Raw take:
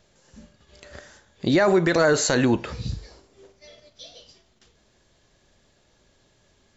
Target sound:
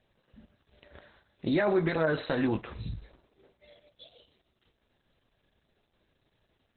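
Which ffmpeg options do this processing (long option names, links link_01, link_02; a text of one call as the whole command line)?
ffmpeg -i in.wav -filter_complex "[0:a]acrossover=split=6500[link_01][link_02];[link_02]acompressor=threshold=-56dB:ratio=4:attack=1:release=60[link_03];[link_01][link_03]amix=inputs=2:normalize=0,asettb=1/sr,asplit=3[link_04][link_05][link_06];[link_04]atrim=end=0.984[link_07];[link_05]atrim=start=0.98:end=4.05,asetpts=PTS-STARTPTS,afade=type=in:duration=0.004:curve=qsin,afade=type=out:start_time=3.066:duration=0.004:curve=qsin,asplit=2[link_08][link_09];[link_09]adelay=19,volume=-7dB[link_10];[link_08][link_10]amix=inputs=2:normalize=0,atrim=end_sample=135387[link_11];[link_06]atrim=start=4.046[link_12];[link_07][link_11]acrossfade=duration=0.004:curve1=hsin:curve2=qsin[link_13];[link_13][link_12]acrossfade=duration=0.004:curve1=qsin:curve2=hsin,volume=-7.5dB" -ar 48000 -c:a libopus -b:a 8k out.opus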